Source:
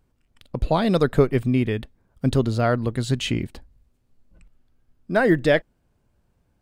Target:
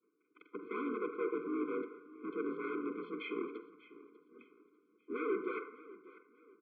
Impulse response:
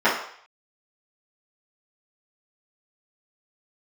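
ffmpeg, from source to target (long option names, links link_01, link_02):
-filter_complex "[0:a]agate=range=-33dB:threshold=-57dB:ratio=3:detection=peak,tiltshelf=frequency=970:gain=4.5,areverse,acompressor=threshold=-28dB:ratio=12,areverse,asoftclip=type=hard:threshold=-37.5dB,aecho=1:1:594|1188|1782:0.126|0.0415|0.0137,asplit=2[link_01][link_02];[1:a]atrim=start_sample=2205,adelay=40[link_03];[link_02][link_03]afir=irnorm=-1:irlink=0,volume=-27.5dB[link_04];[link_01][link_04]amix=inputs=2:normalize=0,asplit=4[link_05][link_06][link_07][link_08];[link_06]asetrate=33038,aresample=44100,atempo=1.33484,volume=-15dB[link_09];[link_07]asetrate=35002,aresample=44100,atempo=1.25992,volume=-6dB[link_10];[link_08]asetrate=58866,aresample=44100,atempo=0.749154,volume=-15dB[link_11];[link_05][link_09][link_10][link_11]amix=inputs=4:normalize=0,highpass=frequency=260:width_type=q:width=0.5412,highpass=frequency=260:width_type=q:width=1.307,lowpass=frequency=2500:width_type=q:width=0.5176,lowpass=frequency=2500:width_type=q:width=0.7071,lowpass=frequency=2500:width_type=q:width=1.932,afreqshift=58,afftfilt=real='re*eq(mod(floor(b*sr/1024/510),2),0)':imag='im*eq(mod(floor(b*sr/1024/510),2),0)':win_size=1024:overlap=0.75,volume=6.5dB"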